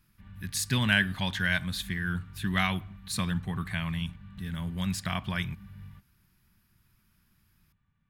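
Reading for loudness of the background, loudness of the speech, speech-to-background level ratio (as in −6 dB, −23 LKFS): −47.5 LKFS, −30.5 LKFS, 17.0 dB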